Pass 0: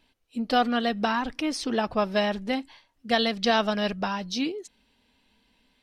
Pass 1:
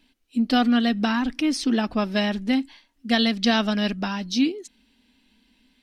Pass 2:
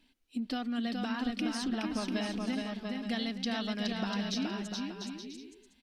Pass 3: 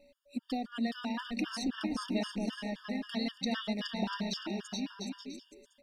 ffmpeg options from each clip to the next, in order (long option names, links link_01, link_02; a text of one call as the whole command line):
ffmpeg -i in.wav -af "equalizer=frequency=125:width_type=o:width=1:gain=-11,equalizer=frequency=250:width_type=o:width=1:gain=9,equalizer=frequency=500:width_type=o:width=1:gain=-7,equalizer=frequency=1000:width_type=o:width=1:gain=-5,volume=3.5dB" out.wav
ffmpeg -i in.wav -filter_complex "[0:a]acompressor=threshold=-27dB:ratio=6,asplit=2[link_01][link_02];[link_02]aecho=0:1:420|693|870.4|985.8|1061:0.631|0.398|0.251|0.158|0.1[link_03];[link_01][link_03]amix=inputs=2:normalize=0,volume=-5.5dB" out.wav
ffmpeg -i in.wav -af "bandreject=frequency=60:width_type=h:width=6,bandreject=frequency=120:width_type=h:width=6,bandreject=frequency=180:width_type=h:width=6,bandreject=frequency=240:width_type=h:width=6,aeval=exprs='val(0)+0.000794*sin(2*PI*570*n/s)':channel_layout=same,afftfilt=real='re*gt(sin(2*PI*3.8*pts/sr)*(1-2*mod(floor(b*sr/1024/920),2)),0)':imag='im*gt(sin(2*PI*3.8*pts/sr)*(1-2*mod(floor(b*sr/1024/920),2)),0)':win_size=1024:overlap=0.75,volume=2dB" out.wav